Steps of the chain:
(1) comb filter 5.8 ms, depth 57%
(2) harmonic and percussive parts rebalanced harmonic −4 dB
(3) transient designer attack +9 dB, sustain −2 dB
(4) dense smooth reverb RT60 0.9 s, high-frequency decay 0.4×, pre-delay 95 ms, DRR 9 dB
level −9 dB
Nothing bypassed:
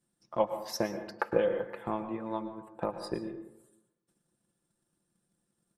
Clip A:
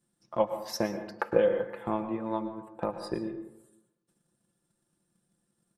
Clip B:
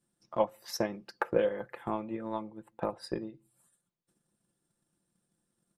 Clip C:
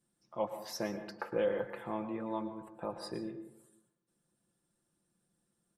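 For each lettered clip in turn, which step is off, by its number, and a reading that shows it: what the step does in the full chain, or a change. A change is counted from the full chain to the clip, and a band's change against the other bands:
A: 2, 250 Hz band +2.0 dB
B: 4, change in momentary loudness spread −2 LU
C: 3, change in crest factor −4.0 dB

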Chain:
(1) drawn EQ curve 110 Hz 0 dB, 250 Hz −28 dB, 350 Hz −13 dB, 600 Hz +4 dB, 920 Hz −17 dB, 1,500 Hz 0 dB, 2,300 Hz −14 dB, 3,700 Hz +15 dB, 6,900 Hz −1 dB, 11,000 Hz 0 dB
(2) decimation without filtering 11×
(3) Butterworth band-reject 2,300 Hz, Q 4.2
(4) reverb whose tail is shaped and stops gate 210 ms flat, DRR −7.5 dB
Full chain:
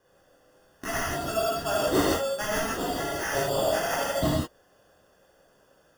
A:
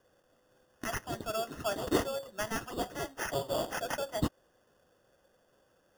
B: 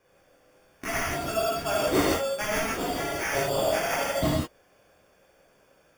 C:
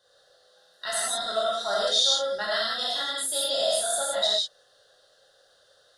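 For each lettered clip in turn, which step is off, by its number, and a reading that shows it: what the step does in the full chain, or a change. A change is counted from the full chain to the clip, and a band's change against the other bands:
4, change in crest factor +6.5 dB
3, 2 kHz band +1.5 dB
2, 250 Hz band −16.5 dB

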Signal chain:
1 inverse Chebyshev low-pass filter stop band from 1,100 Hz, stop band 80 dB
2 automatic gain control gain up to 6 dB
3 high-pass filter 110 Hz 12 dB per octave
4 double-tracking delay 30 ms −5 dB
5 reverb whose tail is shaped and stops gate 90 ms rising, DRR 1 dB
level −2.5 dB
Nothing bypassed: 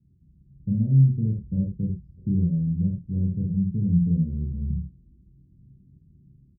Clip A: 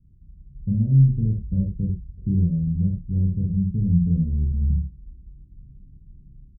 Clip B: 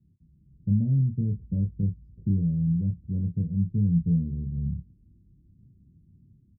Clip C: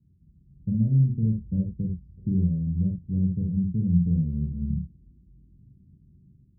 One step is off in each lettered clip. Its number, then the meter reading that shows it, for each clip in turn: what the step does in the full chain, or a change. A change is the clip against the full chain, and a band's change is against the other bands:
3, change in momentary loudness spread −1 LU
5, change in momentary loudness spread −4 LU
4, change in momentary loudness spread −1 LU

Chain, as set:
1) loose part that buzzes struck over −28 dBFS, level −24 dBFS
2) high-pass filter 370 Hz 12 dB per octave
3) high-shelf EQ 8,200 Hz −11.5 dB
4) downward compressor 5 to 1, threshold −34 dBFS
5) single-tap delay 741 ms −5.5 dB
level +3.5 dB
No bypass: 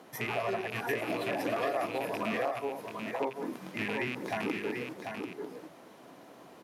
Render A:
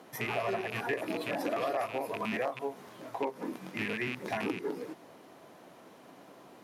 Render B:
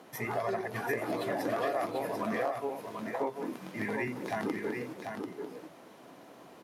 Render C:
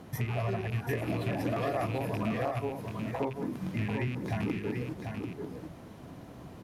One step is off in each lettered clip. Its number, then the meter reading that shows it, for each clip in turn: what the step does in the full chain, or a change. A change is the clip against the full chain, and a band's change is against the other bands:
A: 5, change in momentary loudness spread +3 LU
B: 1, 4 kHz band −6.0 dB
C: 2, 125 Hz band +16.0 dB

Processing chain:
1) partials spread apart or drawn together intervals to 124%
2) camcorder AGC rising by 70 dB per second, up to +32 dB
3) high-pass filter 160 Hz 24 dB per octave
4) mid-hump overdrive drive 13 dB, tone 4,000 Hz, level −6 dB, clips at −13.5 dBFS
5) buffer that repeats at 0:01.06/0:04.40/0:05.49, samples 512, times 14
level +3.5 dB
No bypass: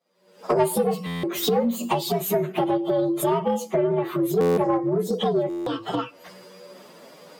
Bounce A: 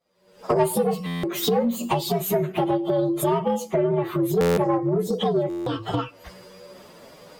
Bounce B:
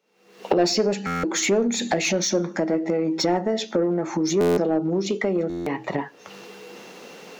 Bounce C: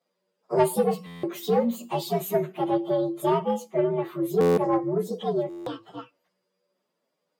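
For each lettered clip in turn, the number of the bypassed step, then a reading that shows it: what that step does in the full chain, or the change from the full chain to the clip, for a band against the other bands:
3, 125 Hz band +3.0 dB
1, 2 kHz band +7.0 dB
2, change in crest factor +2.0 dB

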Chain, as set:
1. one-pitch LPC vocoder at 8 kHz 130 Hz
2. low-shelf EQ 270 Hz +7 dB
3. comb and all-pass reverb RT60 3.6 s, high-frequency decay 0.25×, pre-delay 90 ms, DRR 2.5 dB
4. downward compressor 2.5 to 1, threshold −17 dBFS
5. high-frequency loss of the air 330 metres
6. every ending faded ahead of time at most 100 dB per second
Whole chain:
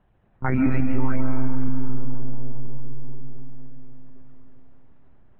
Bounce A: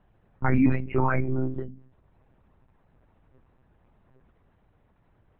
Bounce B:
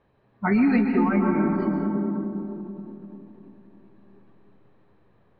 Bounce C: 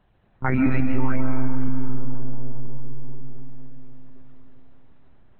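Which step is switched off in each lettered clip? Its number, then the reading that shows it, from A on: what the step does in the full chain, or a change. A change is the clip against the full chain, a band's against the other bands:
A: 3, change in momentary loudness spread −8 LU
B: 1, change in crest factor +8.5 dB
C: 5, 2 kHz band +2.5 dB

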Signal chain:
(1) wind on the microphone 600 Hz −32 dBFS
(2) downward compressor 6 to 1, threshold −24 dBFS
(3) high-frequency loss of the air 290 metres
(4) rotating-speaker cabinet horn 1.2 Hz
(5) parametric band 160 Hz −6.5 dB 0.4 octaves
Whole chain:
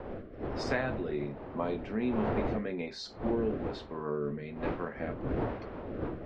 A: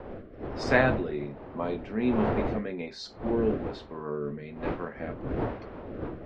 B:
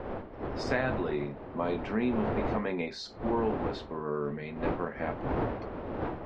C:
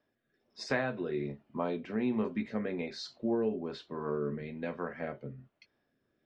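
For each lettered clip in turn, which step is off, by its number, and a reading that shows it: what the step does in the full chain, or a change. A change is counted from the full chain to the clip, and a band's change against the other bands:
2, change in crest factor +5.0 dB
4, 1 kHz band +3.0 dB
1, 125 Hz band −4.0 dB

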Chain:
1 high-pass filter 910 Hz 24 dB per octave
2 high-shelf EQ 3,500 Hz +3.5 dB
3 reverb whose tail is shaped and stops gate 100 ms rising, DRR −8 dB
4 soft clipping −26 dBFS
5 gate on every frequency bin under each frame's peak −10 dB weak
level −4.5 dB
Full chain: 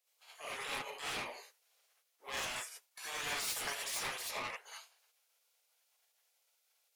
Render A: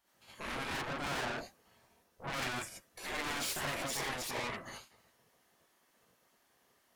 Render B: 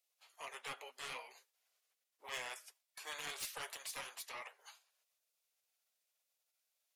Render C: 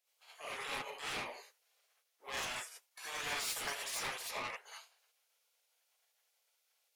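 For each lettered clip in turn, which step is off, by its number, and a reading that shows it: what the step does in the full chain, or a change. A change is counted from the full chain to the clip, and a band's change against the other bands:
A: 1, 125 Hz band +9.5 dB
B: 3, change in crest factor +4.5 dB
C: 2, change in momentary loudness spread −2 LU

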